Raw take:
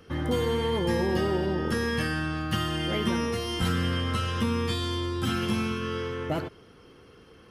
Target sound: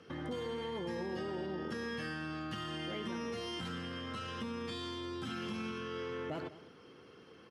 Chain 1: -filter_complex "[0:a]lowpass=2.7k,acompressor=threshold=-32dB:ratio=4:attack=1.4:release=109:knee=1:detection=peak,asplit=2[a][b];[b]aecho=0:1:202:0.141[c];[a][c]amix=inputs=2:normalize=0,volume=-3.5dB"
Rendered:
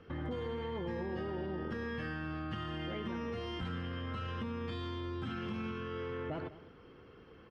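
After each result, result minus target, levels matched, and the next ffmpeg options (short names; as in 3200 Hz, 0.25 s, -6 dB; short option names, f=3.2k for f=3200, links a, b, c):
8000 Hz band -14.5 dB; 125 Hz band +5.0 dB
-filter_complex "[0:a]lowpass=7.1k,acompressor=threshold=-32dB:ratio=4:attack=1.4:release=109:knee=1:detection=peak,asplit=2[a][b];[b]aecho=0:1:202:0.141[c];[a][c]amix=inputs=2:normalize=0,volume=-3.5dB"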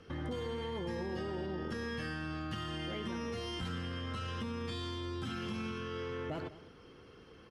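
125 Hz band +4.5 dB
-filter_complex "[0:a]lowpass=7.1k,acompressor=threshold=-32dB:ratio=4:attack=1.4:release=109:knee=1:detection=peak,highpass=140,asplit=2[a][b];[b]aecho=0:1:202:0.141[c];[a][c]amix=inputs=2:normalize=0,volume=-3.5dB"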